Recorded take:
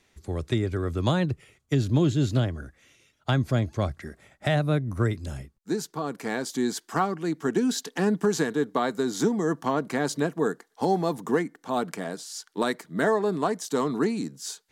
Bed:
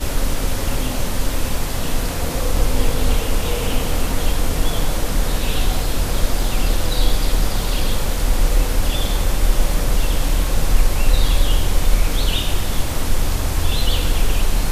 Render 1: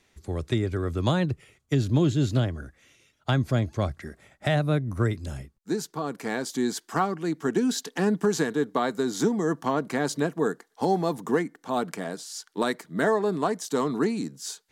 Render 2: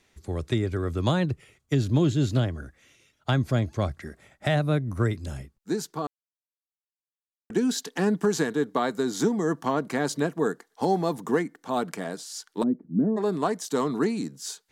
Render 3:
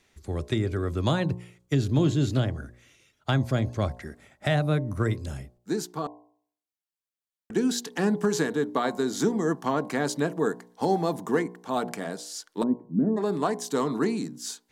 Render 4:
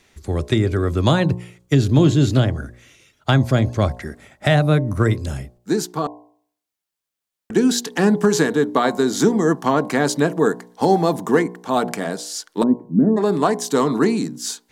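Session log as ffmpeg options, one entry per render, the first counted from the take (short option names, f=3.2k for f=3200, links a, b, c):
-af anull
-filter_complex "[0:a]asplit=3[a][b][c];[a]afade=t=out:st=12.62:d=0.02[d];[b]lowpass=f=250:t=q:w=2.7,afade=t=in:st=12.62:d=0.02,afade=t=out:st=13.16:d=0.02[e];[c]afade=t=in:st=13.16:d=0.02[f];[d][e][f]amix=inputs=3:normalize=0,asplit=3[g][h][i];[g]atrim=end=6.07,asetpts=PTS-STARTPTS,afade=t=out:st=6.066:d=0.004:c=hsin[j];[h]atrim=start=6.07:end=7.5,asetpts=PTS-STARTPTS,volume=0[k];[i]atrim=start=7.5,asetpts=PTS-STARTPTS,afade=t=in:d=0.004:c=hsin[l];[j][k][l]concat=n=3:v=0:a=1"
-af "bandreject=f=59.85:t=h:w=4,bandreject=f=119.7:t=h:w=4,bandreject=f=179.55:t=h:w=4,bandreject=f=239.4:t=h:w=4,bandreject=f=299.25:t=h:w=4,bandreject=f=359.1:t=h:w=4,bandreject=f=418.95:t=h:w=4,bandreject=f=478.8:t=h:w=4,bandreject=f=538.65:t=h:w=4,bandreject=f=598.5:t=h:w=4,bandreject=f=658.35:t=h:w=4,bandreject=f=718.2:t=h:w=4,bandreject=f=778.05:t=h:w=4,bandreject=f=837.9:t=h:w=4,bandreject=f=897.75:t=h:w=4,bandreject=f=957.6:t=h:w=4,bandreject=f=1.01745k:t=h:w=4,bandreject=f=1.0773k:t=h:w=4"
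-af "volume=8.5dB"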